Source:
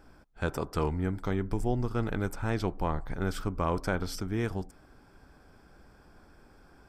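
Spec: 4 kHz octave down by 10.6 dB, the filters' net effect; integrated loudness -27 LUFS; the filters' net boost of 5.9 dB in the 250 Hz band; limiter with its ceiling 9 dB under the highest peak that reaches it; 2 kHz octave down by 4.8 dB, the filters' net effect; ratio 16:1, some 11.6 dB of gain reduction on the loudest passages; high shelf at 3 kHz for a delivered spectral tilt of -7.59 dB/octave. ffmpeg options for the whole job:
-af "equalizer=f=250:t=o:g=8,equalizer=f=2000:t=o:g=-3.5,highshelf=f=3000:g=-8,equalizer=f=4000:t=o:g=-6.5,acompressor=threshold=0.0224:ratio=16,volume=5.96,alimiter=limit=0.168:level=0:latency=1"

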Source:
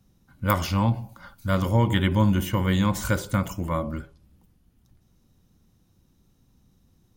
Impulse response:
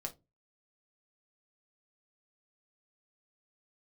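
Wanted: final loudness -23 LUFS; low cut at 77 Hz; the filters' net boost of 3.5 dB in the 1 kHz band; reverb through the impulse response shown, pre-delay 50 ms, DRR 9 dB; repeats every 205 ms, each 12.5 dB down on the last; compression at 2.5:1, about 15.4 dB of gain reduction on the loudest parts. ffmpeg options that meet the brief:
-filter_complex "[0:a]highpass=77,equalizer=f=1000:t=o:g=4,acompressor=threshold=0.01:ratio=2.5,aecho=1:1:205|410|615:0.237|0.0569|0.0137,asplit=2[s0][s1];[1:a]atrim=start_sample=2205,adelay=50[s2];[s1][s2]afir=irnorm=-1:irlink=0,volume=0.422[s3];[s0][s3]amix=inputs=2:normalize=0,volume=5.31"

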